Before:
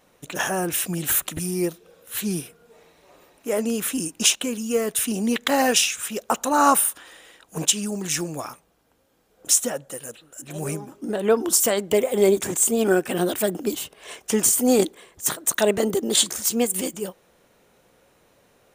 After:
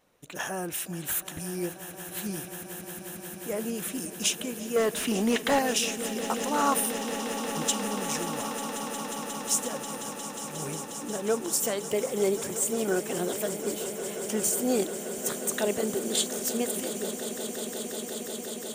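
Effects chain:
0:04.76–0:05.59: mid-hump overdrive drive 23 dB, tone 2,000 Hz, clips at −5.5 dBFS
echo that builds up and dies away 179 ms, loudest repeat 8, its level −15 dB
level −8.5 dB

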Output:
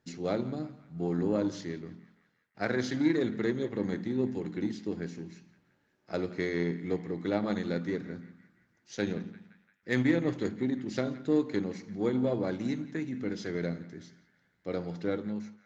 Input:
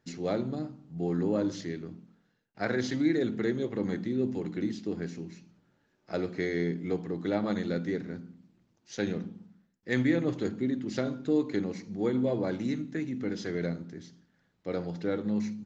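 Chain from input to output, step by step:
fade-out on the ending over 0.52 s
harmonic generator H 7 −31 dB, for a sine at −13.5 dBFS
feedback echo with a band-pass in the loop 172 ms, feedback 63%, band-pass 1,700 Hz, level −15.5 dB

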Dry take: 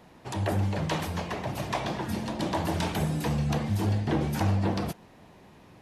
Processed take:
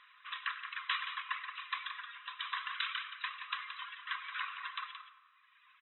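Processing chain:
reverb reduction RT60 1.8 s
0:01.40–0:02.30: downward compressor 4 to 1, threshold −33 dBFS, peak gain reduction 7 dB
linear-phase brick-wall band-pass 1,000–4,000 Hz
multi-tap delay 97/174 ms −19/−9 dB
convolution reverb RT60 1.8 s, pre-delay 25 ms, DRR 11 dB
level +2 dB

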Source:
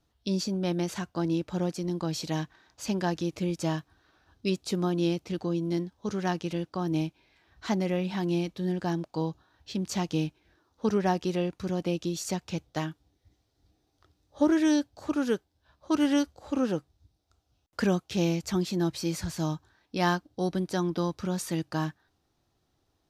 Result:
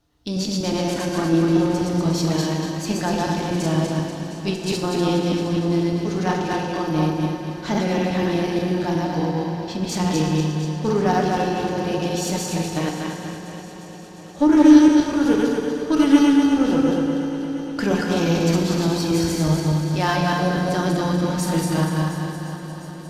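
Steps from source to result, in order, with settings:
feedback delay that plays each chunk backwards 121 ms, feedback 64%, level −0.5 dB
in parallel at −4 dB: asymmetric clip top −32 dBFS
on the sum: echo machine with several playback heads 354 ms, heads first and second, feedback 68%, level −17.5 dB
feedback delay network reverb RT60 2.1 s, low-frequency decay 0.8×, high-frequency decay 0.65×, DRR 2 dB

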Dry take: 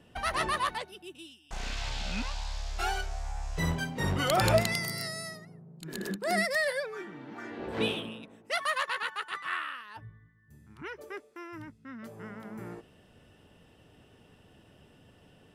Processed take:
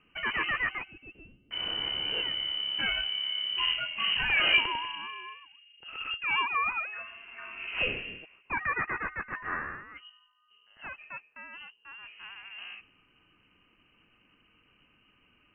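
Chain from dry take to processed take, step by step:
voice inversion scrambler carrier 3,000 Hz
low-pass that shuts in the quiet parts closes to 1,500 Hz, open at −26.5 dBFS

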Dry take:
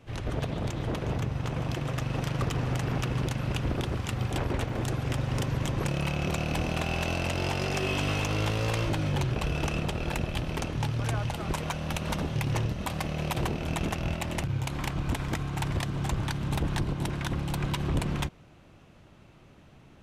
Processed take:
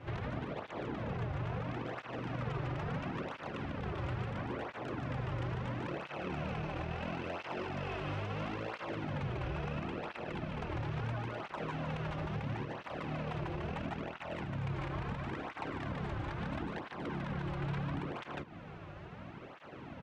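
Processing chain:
compressing power law on the bin magnitudes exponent 0.69
low-pass filter 1,900 Hz 12 dB per octave
single-tap delay 148 ms −3 dB
downward compressor, threshold −39 dBFS, peak gain reduction 15.5 dB
brickwall limiter −36 dBFS, peak gain reduction 6.5 dB
through-zero flanger with one copy inverted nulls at 0.74 Hz, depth 4.7 ms
level +8.5 dB

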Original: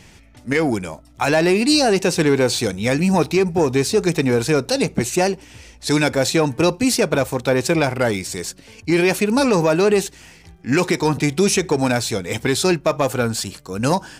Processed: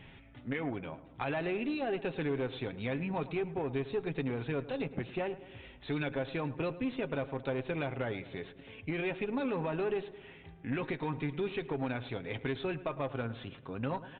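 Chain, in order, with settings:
comb filter 7.4 ms, depth 43%
harmonic generator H 6 −24 dB, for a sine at −4 dBFS
downward compressor 2 to 1, threshold −34 dBFS, peak gain reduction 13 dB
on a send: feedback echo with a low-pass in the loop 108 ms, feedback 58%, low-pass 2,100 Hz, level −15 dB
on the sum: downsampling to 8,000 Hz
level −7 dB

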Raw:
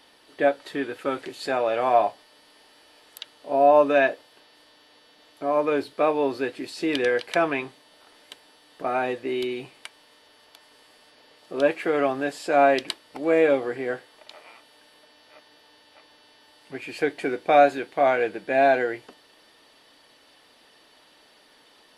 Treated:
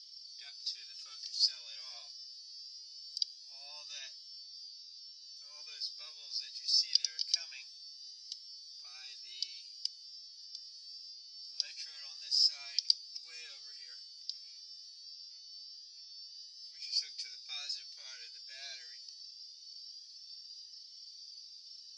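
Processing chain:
flat-topped band-pass 5,200 Hz, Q 5.6
boost into a limiter +27 dB
flanger whose copies keep moving one way rising 0.24 Hz
level −5 dB

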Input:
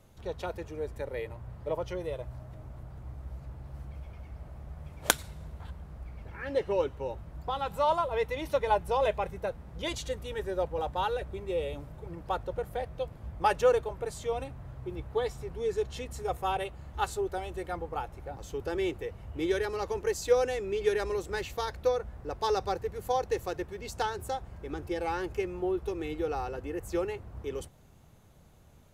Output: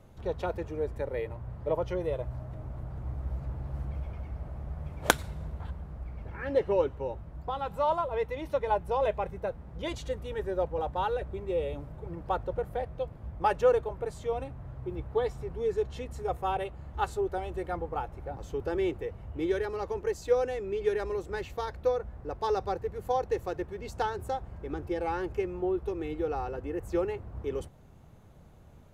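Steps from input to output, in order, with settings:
high-shelf EQ 2,500 Hz −10 dB
in parallel at +1 dB: speech leveller 2 s
on the sum: level −6 dB

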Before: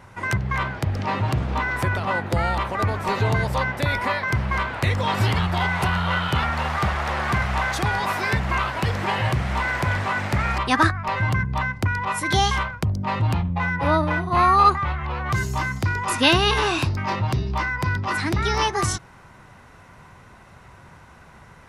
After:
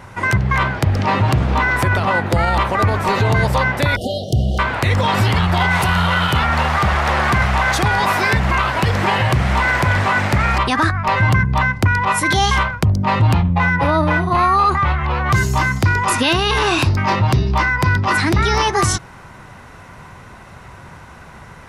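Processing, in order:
0:05.70–0:06.38: high-shelf EQ 5,200 Hz → 10,000 Hz +9.5 dB
brickwall limiter −15.5 dBFS, peak gain reduction 10 dB
0:03.96–0:04.59: linear-phase brick-wall band-stop 780–2,800 Hz
level +8.5 dB

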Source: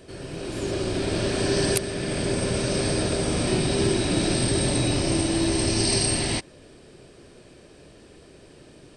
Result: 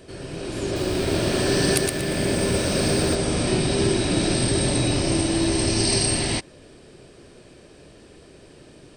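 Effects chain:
0:00.64–0:03.15: feedback echo at a low word length 117 ms, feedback 35%, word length 7 bits, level −3 dB
level +1.5 dB

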